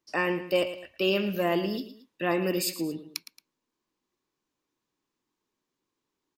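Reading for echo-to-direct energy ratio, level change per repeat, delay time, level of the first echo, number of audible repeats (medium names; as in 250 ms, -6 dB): -12.5 dB, -8.0 dB, 112 ms, -13.0 dB, 2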